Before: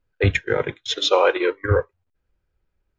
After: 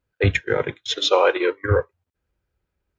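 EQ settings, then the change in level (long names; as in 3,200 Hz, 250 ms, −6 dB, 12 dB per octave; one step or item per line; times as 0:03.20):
high-pass filter 49 Hz
0.0 dB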